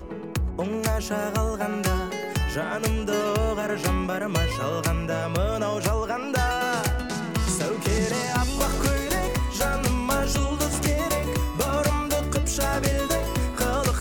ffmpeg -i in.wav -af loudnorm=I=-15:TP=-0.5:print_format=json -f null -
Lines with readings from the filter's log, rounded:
"input_i" : "-25.4",
"input_tp" : "-12.2",
"input_lra" : "1.4",
"input_thresh" : "-35.4",